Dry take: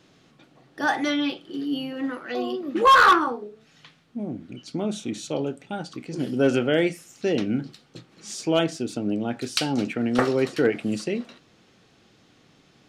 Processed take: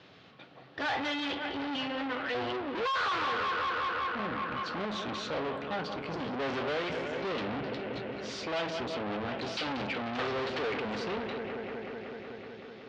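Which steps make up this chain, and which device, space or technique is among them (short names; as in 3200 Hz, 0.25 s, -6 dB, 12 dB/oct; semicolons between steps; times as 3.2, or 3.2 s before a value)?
analogue delay pedal into a guitar amplifier (analogue delay 0.187 s, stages 4096, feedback 82%, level -15.5 dB; tube stage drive 37 dB, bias 0.65; speaker cabinet 87–4300 Hz, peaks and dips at 150 Hz -8 dB, 230 Hz -7 dB, 330 Hz -8 dB); gain +8 dB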